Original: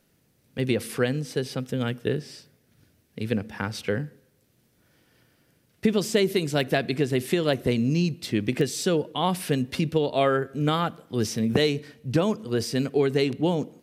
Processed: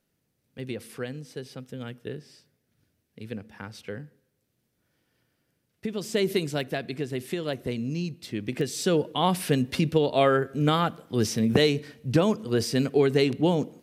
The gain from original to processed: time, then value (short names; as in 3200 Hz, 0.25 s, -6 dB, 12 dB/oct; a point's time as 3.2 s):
5.9 s -10 dB
6.32 s -0.5 dB
6.7 s -7 dB
8.38 s -7 dB
8.99 s +1 dB